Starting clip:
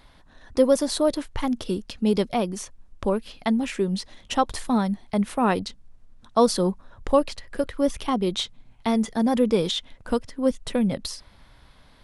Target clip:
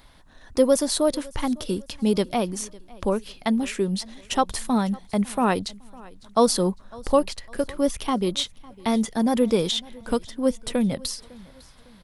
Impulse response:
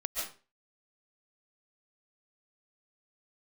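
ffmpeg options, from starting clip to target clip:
-af "highshelf=f=7400:g=8.5,aecho=1:1:554|1108|1662:0.0708|0.0283|0.0113"

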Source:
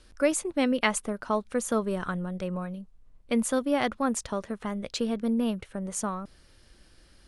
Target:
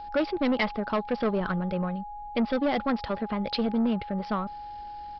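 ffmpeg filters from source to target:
-af "aeval=exprs='val(0)+0.00794*sin(2*PI*830*n/s)':c=same,aresample=11025,asoftclip=type=tanh:threshold=0.0562,aresample=44100,atempo=1.4,volume=1.78"

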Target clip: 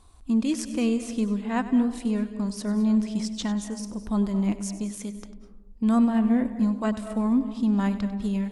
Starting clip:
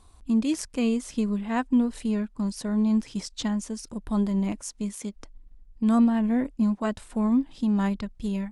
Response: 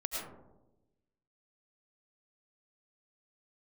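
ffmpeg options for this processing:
-filter_complex "[0:a]asplit=2[s0][s1];[1:a]atrim=start_sample=2205,adelay=97[s2];[s1][s2]afir=irnorm=-1:irlink=0,volume=0.224[s3];[s0][s3]amix=inputs=2:normalize=0"

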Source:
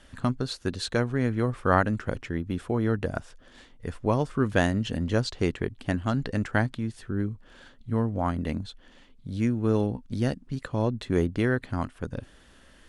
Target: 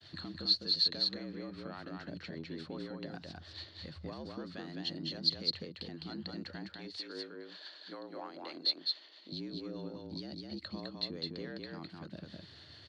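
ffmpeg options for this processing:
-filter_complex "[0:a]agate=range=0.0224:threshold=0.00251:ratio=3:detection=peak,asettb=1/sr,asplit=3[s0][s1][s2];[s0]atrim=end=6.744[s3];[s1]atrim=start=6.74:end=9.32,asetpts=PTS-STARTPTS,afade=t=in:d=0.004:c=qsin,afade=t=out:st=2.576:d=0.004:c=qsin,highpass=380[s4];[s2]atrim=start=9.316[s5];[s3][s4]acrossfade=d=0.004:c1=hsin:c2=qsin[s6];[s6][s5]acrossfade=d=0.004:c1=qsin:c2=hsin,acompressor=threshold=0.0178:ratio=4,alimiter=level_in=1.88:limit=0.0631:level=0:latency=1:release=33,volume=0.531,acrossover=split=570[s7][s8];[s7]aeval=exprs='val(0)*(1-0.5/2+0.5/2*cos(2*PI*7.1*n/s))':c=same[s9];[s8]aeval=exprs='val(0)*(1-0.5/2-0.5/2*cos(2*PI*7.1*n/s))':c=same[s10];[s9][s10]amix=inputs=2:normalize=0,asoftclip=type=tanh:threshold=0.0335,afreqshift=71,lowpass=f=4300:t=q:w=15,aecho=1:1:207:0.708,volume=0.75"

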